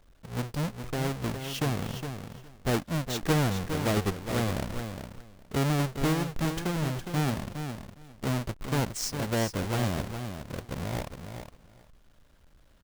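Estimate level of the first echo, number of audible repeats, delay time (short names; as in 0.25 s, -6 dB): -8.0 dB, 2, 0.412 s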